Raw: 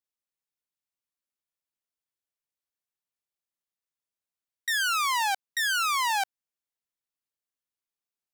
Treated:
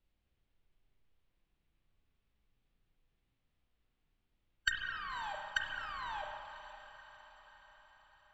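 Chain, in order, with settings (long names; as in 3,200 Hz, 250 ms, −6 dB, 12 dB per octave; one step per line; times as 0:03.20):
low-pass filter 4,200 Hz 24 dB per octave
spectral tilt +4.5 dB per octave
treble cut that deepens with the level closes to 390 Hz, closed at −21.5 dBFS
in parallel at −7 dB: soft clipping −26.5 dBFS, distortion −9 dB
on the sum: background noise brown −76 dBFS
formants moved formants −4 semitones
on a send: feedback delay with all-pass diffusion 572 ms, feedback 57%, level −13.5 dB
on the sum: spring reverb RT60 2.1 s, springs 33/51 ms, chirp 65 ms, DRR 1.5 dB
level −3 dB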